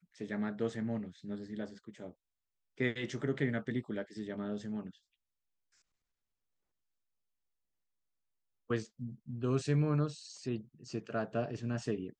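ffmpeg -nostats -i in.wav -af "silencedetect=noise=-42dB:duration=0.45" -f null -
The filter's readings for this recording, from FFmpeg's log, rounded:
silence_start: 2.10
silence_end: 2.80 | silence_duration: 0.70
silence_start: 4.90
silence_end: 8.70 | silence_duration: 3.80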